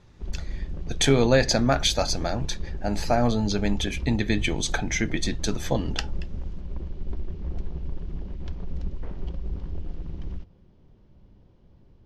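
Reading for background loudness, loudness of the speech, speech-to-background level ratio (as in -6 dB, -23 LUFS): -36.5 LUFS, -25.0 LUFS, 11.5 dB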